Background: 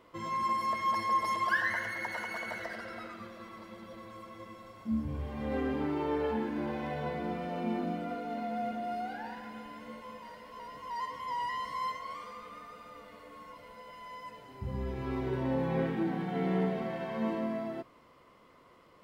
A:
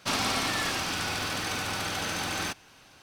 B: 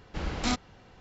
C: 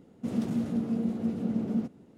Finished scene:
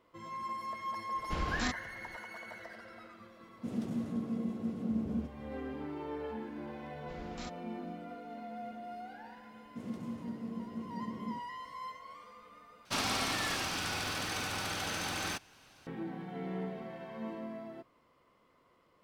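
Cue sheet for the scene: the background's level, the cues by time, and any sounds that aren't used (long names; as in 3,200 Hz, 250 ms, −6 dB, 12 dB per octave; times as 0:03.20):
background −8.5 dB
0:01.16: mix in B −2 dB + brickwall limiter −22 dBFS
0:03.40: mix in C −6.5 dB
0:06.94: mix in B −16.5 dB
0:09.52: mix in C −11.5 dB
0:12.85: overwrite with A −5 dB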